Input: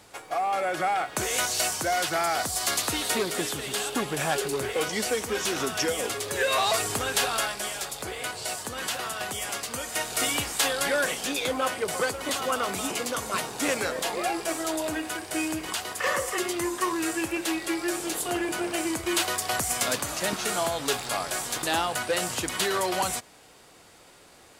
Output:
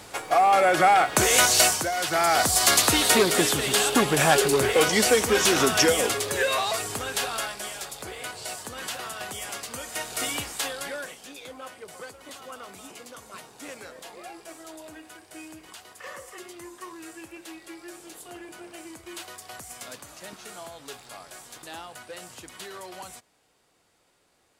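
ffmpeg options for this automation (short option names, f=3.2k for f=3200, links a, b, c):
-af "volume=19dB,afade=t=out:st=1.62:d=0.3:silence=0.266073,afade=t=in:st=1.92:d=0.57:silence=0.281838,afade=t=out:st=5.79:d=0.87:silence=0.298538,afade=t=out:st=10.37:d=0.8:silence=0.281838"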